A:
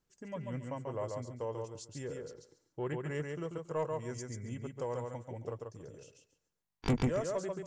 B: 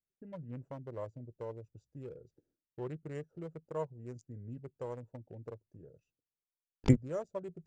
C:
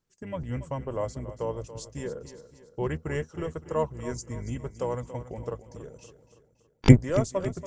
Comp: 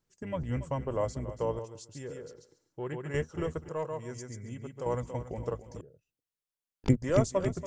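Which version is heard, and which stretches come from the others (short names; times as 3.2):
C
1.59–3.14 from A
3.69–4.86 from A
5.81–7.02 from B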